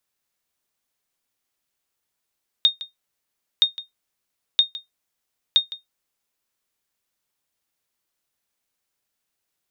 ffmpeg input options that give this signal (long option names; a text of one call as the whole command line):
ffmpeg -f lavfi -i "aevalsrc='0.447*(sin(2*PI*3690*mod(t,0.97))*exp(-6.91*mod(t,0.97)/0.15)+0.141*sin(2*PI*3690*max(mod(t,0.97)-0.16,0))*exp(-6.91*max(mod(t,0.97)-0.16,0)/0.15))':duration=3.88:sample_rate=44100" out.wav